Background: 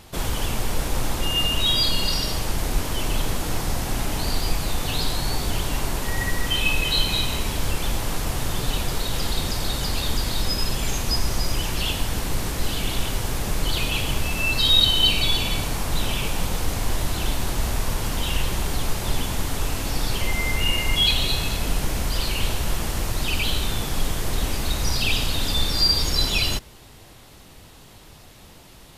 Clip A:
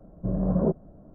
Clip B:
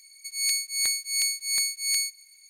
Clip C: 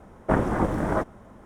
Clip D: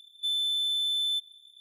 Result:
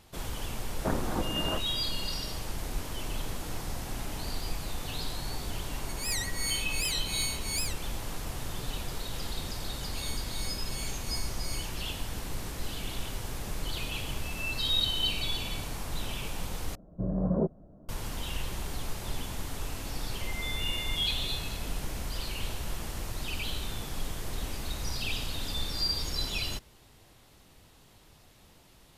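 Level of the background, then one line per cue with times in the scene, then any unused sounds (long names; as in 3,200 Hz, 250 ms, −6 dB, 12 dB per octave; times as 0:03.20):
background −11 dB
0:00.56: mix in C −9 dB + low-pass filter 3,800 Hz 6 dB per octave
0:05.64: mix in B −8 dB + wow of a warped record 78 rpm, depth 250 cents
0:09.59: mix in B −17 dB
0:16.75: overwrite with A −4 dB
0:20.19: mix in D −8.5 dB + brickwall limiter −27.5 dBFS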